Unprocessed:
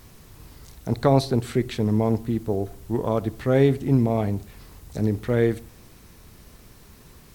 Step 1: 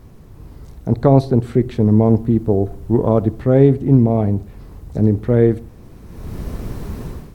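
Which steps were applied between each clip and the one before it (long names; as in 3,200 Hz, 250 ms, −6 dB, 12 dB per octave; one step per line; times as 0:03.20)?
tilt shelving filter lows +8.5 dB, about 1,300 Hz
automatic gain control gain up to 16 dB
level −1 dB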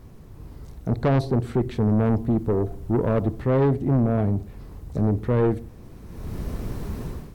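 soft clipping −12 dBFS, distortion −10 dB
level −3 dB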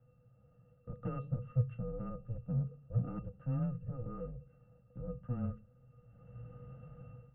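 resonances in every octave F#, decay 0.15 s
single-sideband voice off tune −250 Hz 320–3,000 Hz
level +1.5 dB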